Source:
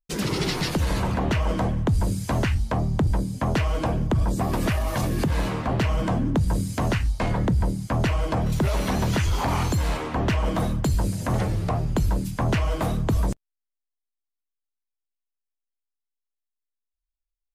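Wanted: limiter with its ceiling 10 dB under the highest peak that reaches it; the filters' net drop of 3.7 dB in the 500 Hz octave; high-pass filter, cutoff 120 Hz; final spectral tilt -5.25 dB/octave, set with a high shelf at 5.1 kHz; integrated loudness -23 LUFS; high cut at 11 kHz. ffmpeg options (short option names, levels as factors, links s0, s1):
-af "highpass=120,lowpass=11000,equalizer=f=500:t=o:g=-5,highshelf=f=5100:g=3.5,volume=2.82,alimiter=limit=0.2:level=0:latency=1"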